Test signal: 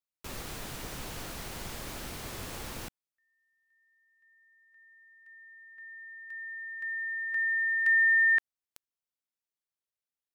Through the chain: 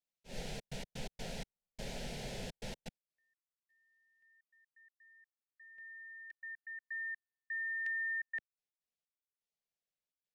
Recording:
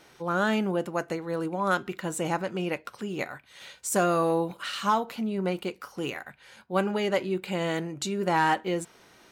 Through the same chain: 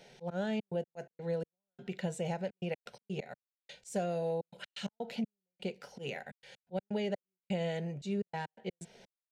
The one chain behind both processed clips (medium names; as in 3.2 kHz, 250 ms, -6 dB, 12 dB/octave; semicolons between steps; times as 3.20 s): treble shelf 3.8 kHz +7.5 dB; slow attack 144 ms; compression 4:1, threshold -32 dBFS; trance gate "xxxxx.x.x.xx...x" 126 bpm -60 dB; tape spacing loss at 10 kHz 21 dB; static phaser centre 310 Hz, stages 6; trim +3.5 dB